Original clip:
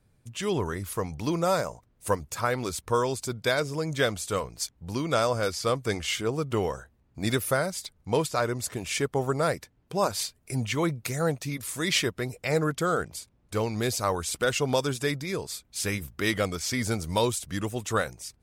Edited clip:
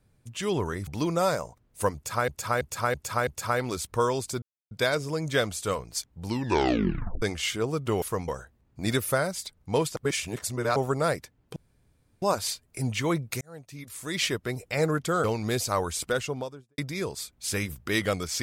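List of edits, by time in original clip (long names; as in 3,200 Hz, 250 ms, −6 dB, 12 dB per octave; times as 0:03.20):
0:00.87–0:01.13: move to 0:06.67
0:02.21–0:02.54: repeat, 5 plays
0:03.36: splice in silence 0.29 s
0:04.89: tape stop 0.98 s
0:08.35–0:09.15: reverse
0:09.95: splice in room tone 0.66 s
0:11.14–0:12.23: fade in
0:12.97–0:13.56: remove
0:14.26–0:15.10: fade out and dull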